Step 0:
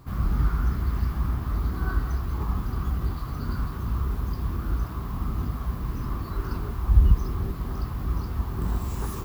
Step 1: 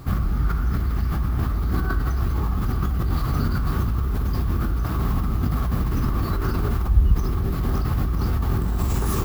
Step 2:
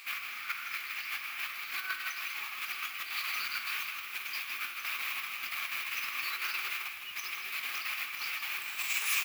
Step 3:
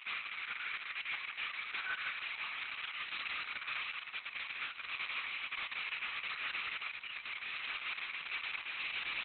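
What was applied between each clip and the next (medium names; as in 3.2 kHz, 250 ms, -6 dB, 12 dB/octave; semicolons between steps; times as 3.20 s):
band-stop 1 kHz, Q 8.6; in parallel at +2.5 dB: compressor with a negative ratio -30 dBFS, ratio -0.5
resonant high-pass 2.4 kHz, resonance Q 7.6; delay 159 ms -9 dB
saturation -34.5 dBFS, distortion -11 dB; Opus 6 kbps 48 kHz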